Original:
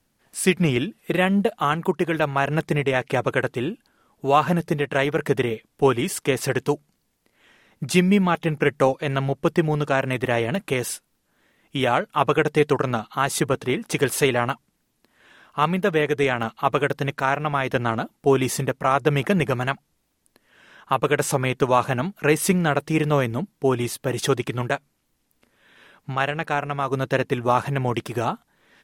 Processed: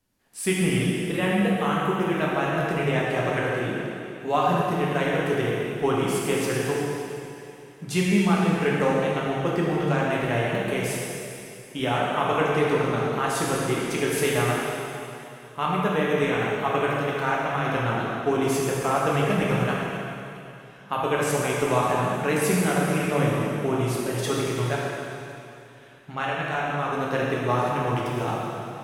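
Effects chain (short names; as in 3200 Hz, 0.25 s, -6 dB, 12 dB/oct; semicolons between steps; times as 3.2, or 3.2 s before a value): plate-style reverb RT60 2.8 s, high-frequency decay 1×, DRR -5 dB; gain -8 dB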